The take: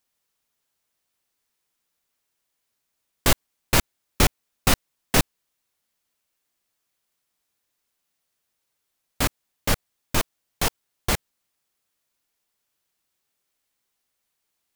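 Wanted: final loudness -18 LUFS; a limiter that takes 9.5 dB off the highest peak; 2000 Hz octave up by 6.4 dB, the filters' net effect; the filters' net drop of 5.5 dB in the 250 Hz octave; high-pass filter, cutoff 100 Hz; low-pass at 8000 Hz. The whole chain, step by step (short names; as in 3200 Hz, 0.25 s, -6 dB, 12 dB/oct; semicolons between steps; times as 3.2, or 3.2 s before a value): HPF 100 Hz; LPF 8000 Hz; bell 250 Hz -7.5 dB; bell 2000 Hz +8 dB; gain +11.5 dB; limiter -2.5 dBFS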